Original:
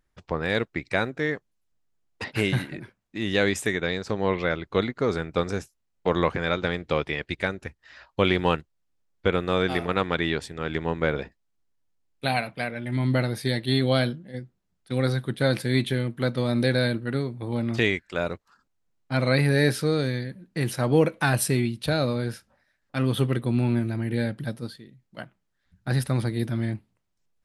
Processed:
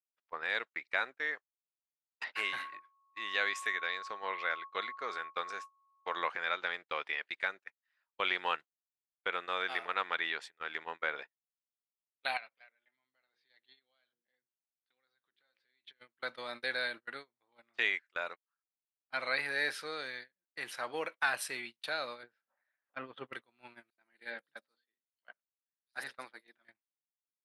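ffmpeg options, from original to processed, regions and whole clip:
-filter_complex "[0:a]asettb=1/sr,asplit=3[a][b][c];[a]atrim=end=2.364[d];[b]atrim=start=2.36:end=6.17,asetpts=PTS-STARTPTS,afade=t=in:d=0.004:c=qsin,afade=t=out:st=3.806:d=0.004:c=qsin,lowshelf=f=320:g=-4,aeval=exprs='val(0)+0.0158*sin(2*PI*1100*n/s)':c=same[e];[c]atrim=start=6.166[f];[d][e]acrossfade=d=0.004:c1=hsin:c2=qsin[g];[g][f]acrossfade=d=0.004:c1=qsin:c2=hsin,asettb=1/sr,asplit=3[h][i][j];[h]atrim=end=12.374[k];[i]atrim=start=12.37:end=16,asetpts=PTS-STARTPTS,afade=t=in:d=0.004:c=qsin,afade=t=out:st=3.626:d=0.004:c=qsin,highshelf=f=6.5k:t=q:w=1.5:g=-12.5,bandreject=f=60:t=h:w=6,bandreject=f=120:t=h:w=6,bandreject=f=180:t=h:w=6,bandreject=f=240:t=h:w=6,bandreject=f=300:t=h:w=6,bandreject=f=360:t=h:w=6,bandreject=f=420:t=h:w=6,bandreject=f=480:t=h:w=6,bandreject=f=540:t=h:w=6,acompressor=threshold=-36dB:ratio=5:attack=3.2:release=140:knee=1:detection=peak[l];[j]atrim=start=15.996[m];[k][l]acrossfade=d=0.004:c1=hsin:c2=qsin[n];[n][m]acrossfade=d=0.004:c1=qsin:c2=hsin,asettb=1/sr,asplit=3[o][p][q];[o]atrim=end=22.234[r];[p]atrim=start=22.23:end=23.33,asetpts=PTS-STARTPTS,afade=t=in:d=0.004:c=qsin,afade=t=out:st=1.096:d=0.004:c=qsin,acompressor=mode=upward:threshold=-28dB:ratio=2.5:attack=3.2:release=140:knee=2.83:detection=peak,lowpass=3.2k,tiltshelf=f=900:g=5.5[s];[q]atrim=start=23.326[t];[r][s]acrossfade=d=0.004:c1=hsin:c2=qsin[u];[u][t]acrossfade=d=0.004:c1=qsin:c2=hsin,asettb=1/sr,asplit=3[v][w][x];[v]atrim=end=23.904[y];[w]atrim=start=23.9:end=26.65,asetpts=PTS-STARTPTS,afade=t=in:d=0.004:c=qsin,afade=t=out:st=2.746:d=0.004:c=qsin,highpass=f=150:w=0.5412,highpass=f=150:w=1.3066,bandreject=f=60:t=h:w=6,bandreject=f=120:t=h:w=6,bandreject=f=180:t=h:w=6,bandreject=f=240:t=h:w=6,bandreject=f=300:t=h:w=6,bandreject=f=360:t=h:w=6,bandreject=f=420:t=h:w=6,bandreject=f=480:t=h:w=6,bandreject=f=540:t=h:w=6,bandreject=f=600:t=h:w=6,acrossover=split=4700[z][aa];[z]adelay=80[ab];[ab][aa]amix=inputs=2:normalize=0,atrim=end_sample=121275[ac];[x]atrim=start=26.646[ad];[y][ac]acrossfade=d=0.004:c1=hsin:c2=qsin[ae];[ae][ad]acrossfade=d=0.004:c1=qsin:c2=hsin,highpass=1.3k,agate=range=-27dB:threshold=-40dB:ratio=16:detection=peak,lowpass=f=1.7k:p=1"

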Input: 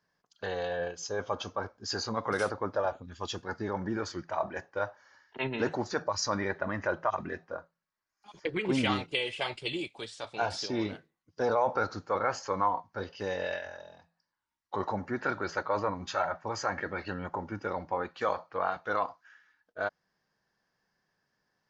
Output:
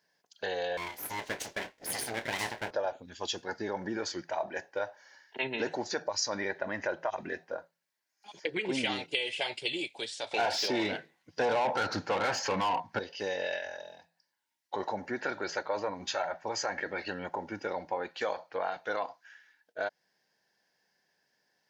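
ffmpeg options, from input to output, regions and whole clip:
-filter_complex "[0:a]asettb=1/sr,asplit=3[a][b][c];[a]atrim=end=0.774[d];[b]atrim=start=0.77:end=2.71,asetpts=PTS-STARTPTS,afade=t=in:d=0.004:c=qsin,afade=t=out:st=1.936:d=0.004:c=qsin,aeval=exprs='abs(val(0))':c=same,asplit=2[e][f];[f]adelay=26,volume=-10dB[g];[e][g]amix=inputs=2:normalize=0,atrim=end_sample=85554[h];[c]atrim=start=2.706[i];[d][h]acrossfade=d=0.004:c1=hsin:c2=qsin[j];[j][i]acrossfade=d=0.004:c1=qsin:c2=hsin,asettb=1/sr,asplit=3[k][l][m];[k]atrim=end=10.314[n];[l]atrim=start=10.31:end=12.99,asetpts=PTS-STARTPTS,afade=t=in:d=0.004:c=qsin,afade=t=out:st=2.676:d=0.004:c=qsin,asubboost=boost=11.5:cutoff=180,asplit=2[o][p];[p]highpass=f=720:p=1,volume=24dB,asoftclip=type=tanh:threshold=-14dB[q];[o][q]amix=inputs=2:normalize=0,lowpass=f=1.5k:p=1,volume=-6dB[r];[m]atrim=start=12.986[s];[n][r]acrossfade=d=0.004:c1=hsin:c2=qsin[t];[t][s]acrossfade=d=0.004:c1=qsin:c2=hsin,highpass=f=580:p=1,equalizer=f=1.2k:w=3.5:g=-15,acompressor=threshold=-38dB:ratio=2,volume=6.5dB"

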